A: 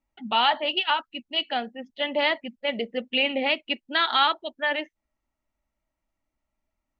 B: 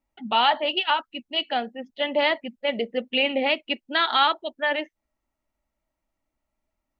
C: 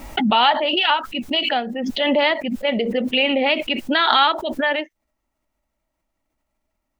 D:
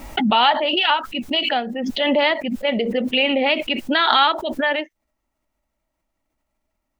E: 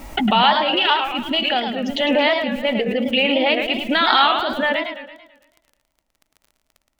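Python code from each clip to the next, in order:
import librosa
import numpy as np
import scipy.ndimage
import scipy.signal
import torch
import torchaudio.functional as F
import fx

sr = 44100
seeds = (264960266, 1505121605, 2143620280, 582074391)

y1 = fx.peak_eq(x, sr, hz=510.0, db=3.0, octaves=2.0)
y2 = fx.pre_swell(y1, sr, db_per_s=27.0)
y2 = y2 * 10.0 ** (3.5 / 20.0)
y3 = y2
y4 = fx.dmg_crackle(y3, sr, seeds[0], per_s=14.0, level_db=-35.0)
y4 = fx.echo_warbled(y4, sr, ms=111, feedback_pct=50, rate_hz=2.8, cents=216, wet_db=-7)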